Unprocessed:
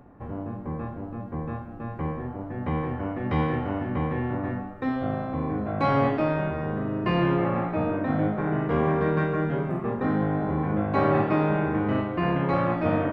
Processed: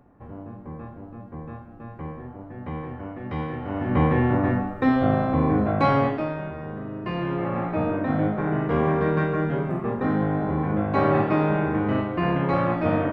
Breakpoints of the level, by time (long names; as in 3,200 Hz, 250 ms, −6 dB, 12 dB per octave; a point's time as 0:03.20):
0:03.58 −5 dB
0:03.99 +7.5 dB
0:05.62 +7.5 dB
0:06.36 −5 dB
0:07.24 −5 dB
0:07.73 +1.5 dB